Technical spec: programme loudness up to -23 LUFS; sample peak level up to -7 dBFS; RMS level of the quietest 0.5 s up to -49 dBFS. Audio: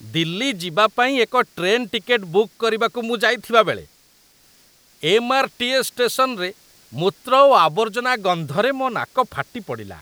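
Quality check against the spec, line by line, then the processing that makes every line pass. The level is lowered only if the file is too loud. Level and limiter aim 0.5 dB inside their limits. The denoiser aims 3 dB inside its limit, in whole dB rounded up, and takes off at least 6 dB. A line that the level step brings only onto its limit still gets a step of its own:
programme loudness -19.0 LUFS: fail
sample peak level -1.5 dBFS: fail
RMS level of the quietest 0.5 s -55 dBFS: pass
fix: trim -4.5 dB; peak limiter -7.5 dBFS

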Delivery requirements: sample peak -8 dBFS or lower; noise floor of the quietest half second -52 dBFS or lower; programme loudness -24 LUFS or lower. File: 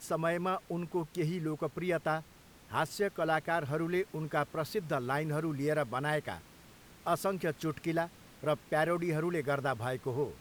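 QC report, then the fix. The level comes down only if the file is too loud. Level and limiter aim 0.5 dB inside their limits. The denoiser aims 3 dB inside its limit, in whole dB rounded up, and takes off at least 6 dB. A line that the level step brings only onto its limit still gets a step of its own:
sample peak -15.5 dBFS: pass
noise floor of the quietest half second -56 dBFS: pass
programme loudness -34.0 LUFS: pass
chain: none needed

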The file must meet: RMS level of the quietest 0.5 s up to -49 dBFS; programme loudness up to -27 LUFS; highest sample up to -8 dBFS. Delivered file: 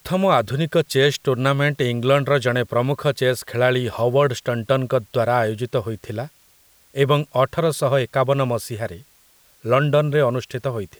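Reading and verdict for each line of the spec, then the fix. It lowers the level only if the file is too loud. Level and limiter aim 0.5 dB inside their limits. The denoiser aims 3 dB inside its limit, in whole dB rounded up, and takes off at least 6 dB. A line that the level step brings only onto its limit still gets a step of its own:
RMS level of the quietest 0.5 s -55 dBFS: pass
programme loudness -20.0 LUFS: fail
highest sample -3.5 dBFS: fail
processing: trim -7.5 dB

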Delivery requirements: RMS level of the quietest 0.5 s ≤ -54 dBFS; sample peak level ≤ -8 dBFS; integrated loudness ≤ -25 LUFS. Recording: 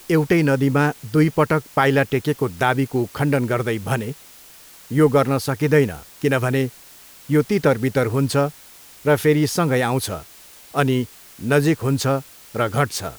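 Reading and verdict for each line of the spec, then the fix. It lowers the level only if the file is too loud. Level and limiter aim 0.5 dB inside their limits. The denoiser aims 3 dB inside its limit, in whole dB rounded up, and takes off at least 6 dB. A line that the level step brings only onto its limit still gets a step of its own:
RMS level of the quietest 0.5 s -45 dBFS: fail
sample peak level -4.0 dBFS: fail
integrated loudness -20.0 LUFS: fail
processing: noise reduction 7 dB, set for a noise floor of -45 dBFS; trim -5.5 dB

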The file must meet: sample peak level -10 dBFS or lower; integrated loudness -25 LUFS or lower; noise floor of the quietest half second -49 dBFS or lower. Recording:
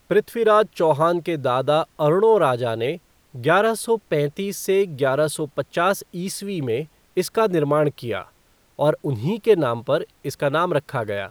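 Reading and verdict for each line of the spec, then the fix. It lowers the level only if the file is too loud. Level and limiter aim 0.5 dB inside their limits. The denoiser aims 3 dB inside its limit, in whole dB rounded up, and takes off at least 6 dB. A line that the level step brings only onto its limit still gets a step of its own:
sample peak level -5.0 dBFS: fail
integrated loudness -21.5 LUFS: fail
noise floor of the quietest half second -58 dBFS: pass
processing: trim -4 dB; peak limiter -10.5 dBFS

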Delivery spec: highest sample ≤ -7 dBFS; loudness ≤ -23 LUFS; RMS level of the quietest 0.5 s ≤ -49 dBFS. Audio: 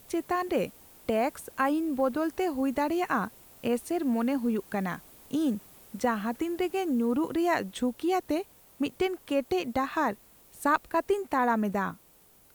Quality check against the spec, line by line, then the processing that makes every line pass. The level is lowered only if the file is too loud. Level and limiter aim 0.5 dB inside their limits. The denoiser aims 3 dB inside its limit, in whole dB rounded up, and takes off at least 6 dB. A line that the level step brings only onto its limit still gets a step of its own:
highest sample -11.5 dBFS: pass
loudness -29.5 LUFS: pass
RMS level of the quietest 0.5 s -59 dBFS: pass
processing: none needed

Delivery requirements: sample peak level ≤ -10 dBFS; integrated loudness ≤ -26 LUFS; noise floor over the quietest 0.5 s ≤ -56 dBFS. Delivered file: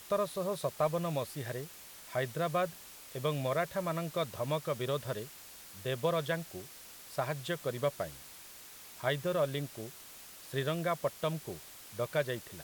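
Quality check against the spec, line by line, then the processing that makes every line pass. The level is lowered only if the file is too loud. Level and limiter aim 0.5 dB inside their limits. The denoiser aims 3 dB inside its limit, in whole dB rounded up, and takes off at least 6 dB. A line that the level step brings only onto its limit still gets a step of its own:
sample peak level -17.0 dBFS: pass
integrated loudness -35.5 LUFS: pass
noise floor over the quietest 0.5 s -51 dBFS: fail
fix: noise reduction 8 dB, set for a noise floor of -51 dBFS

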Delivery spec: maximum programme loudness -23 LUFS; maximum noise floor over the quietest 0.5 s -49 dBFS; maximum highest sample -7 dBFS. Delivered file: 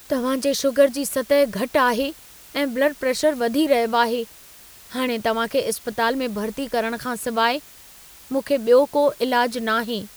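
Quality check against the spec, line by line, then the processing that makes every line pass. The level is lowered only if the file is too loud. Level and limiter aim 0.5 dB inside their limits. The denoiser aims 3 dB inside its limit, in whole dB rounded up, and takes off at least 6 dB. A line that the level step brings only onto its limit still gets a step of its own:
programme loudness -21.5 LUFS: fail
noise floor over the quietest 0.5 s -46 dBFS: fail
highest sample -4.5 dBFS: fail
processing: noise reduction 6 dB, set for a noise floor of -46 dBFS; trim -2 dB; peak limiter -7.5 dBFS

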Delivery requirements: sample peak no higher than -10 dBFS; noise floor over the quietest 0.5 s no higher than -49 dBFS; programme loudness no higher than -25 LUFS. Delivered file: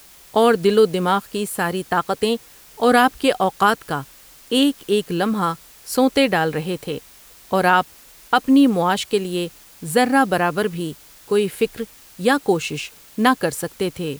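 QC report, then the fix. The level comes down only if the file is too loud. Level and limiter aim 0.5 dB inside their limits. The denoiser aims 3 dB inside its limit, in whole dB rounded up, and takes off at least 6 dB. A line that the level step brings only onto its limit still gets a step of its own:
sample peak -4.0 dBFS: fail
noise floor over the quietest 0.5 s -46 dBFS: fail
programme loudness -19.5 LUFS: fail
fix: trim -6 dB; peak limiter -10.5 dBFS

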